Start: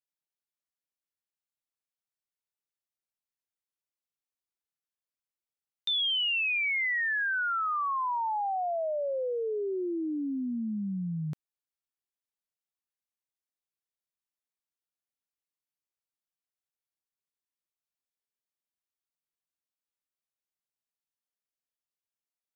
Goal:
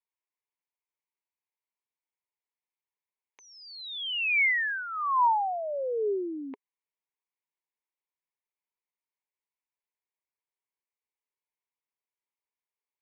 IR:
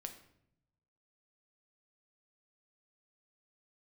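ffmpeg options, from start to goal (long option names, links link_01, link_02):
-af "asetrate=76440,aresample=44100,highpass=400,equalizer=frequency=410:width_type=q:width=4:gain=7,equalizer=frequency=660:width_type=q:width=4:gain=-4,equalizer=frequency=960:width_type=q:width=4:gain=10,equalizer=frequency=1400:width_type=q:width=4:gain=-10,equalizer=frequency=2200:width_type=q:width=4:gain=7,lowpass=frequency=2700:width=0.5412,lowpass=frequency=2700:width=1.3066,volume=1.5dB"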